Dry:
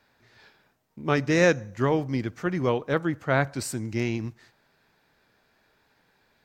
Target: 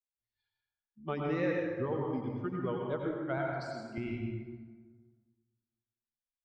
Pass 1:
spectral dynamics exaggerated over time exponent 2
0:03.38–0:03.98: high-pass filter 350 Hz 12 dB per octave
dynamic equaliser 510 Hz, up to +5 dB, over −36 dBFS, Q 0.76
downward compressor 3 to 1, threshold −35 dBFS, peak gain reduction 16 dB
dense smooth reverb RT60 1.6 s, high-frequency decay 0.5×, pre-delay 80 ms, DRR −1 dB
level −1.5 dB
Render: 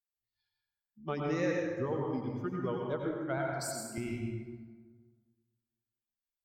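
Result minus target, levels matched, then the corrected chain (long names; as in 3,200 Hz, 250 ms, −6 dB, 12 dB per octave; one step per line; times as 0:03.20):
4,000 Hz band +4.0 dB
spectral dynamics exaggerated over time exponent 2
0:03.38–0:03.98: high-pass filter 350 Hz 12 dB per octave
dynamic equaliser 510 Hz, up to +5 dB, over −36 dBFS, Q 0.76
low-pass filter 3,900 Hz 24 dB per octave
downward compressor 3 to 1, threshold −35 dBFS, peak gain reduction 16 dB
dense smooth reverb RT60 1.6 s, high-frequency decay 0.5×, pre-delay 80 ms, DRR −1 dB
level −1.5 dB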